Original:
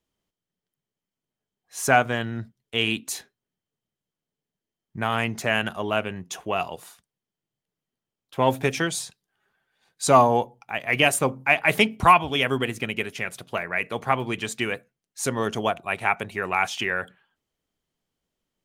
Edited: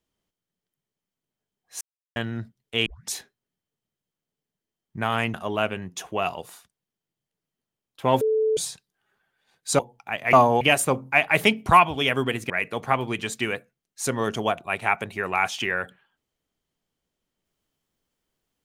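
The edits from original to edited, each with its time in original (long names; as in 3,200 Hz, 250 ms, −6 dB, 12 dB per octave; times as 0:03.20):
0:01.81–0:02.16: silence
0:02.86: tape start 0.27 s
0:05.34–0:05.68: remove
0:08.55–0:08.91: beep over 437 Hz −18.5 dBFS
0:10.13–0:10.41: move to 0:10.95
0:12.84–0:13.69: remove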